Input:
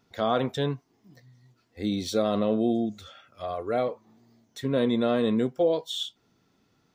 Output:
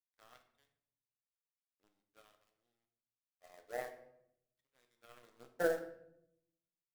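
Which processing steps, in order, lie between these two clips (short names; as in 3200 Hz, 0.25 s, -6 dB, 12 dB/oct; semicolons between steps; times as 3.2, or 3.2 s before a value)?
Bessel low-pass 6400 Hz; resonator 52 Hz, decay 1.1 s, harmonics odd, mix 50%; wah 0.48 Hz 560–2200 Hz, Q 2.1; requantised 8-bit, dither none; power-law curve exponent 3; shoebox room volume 170 m³, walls mixed, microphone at 0.52 m; gain +2.5 dB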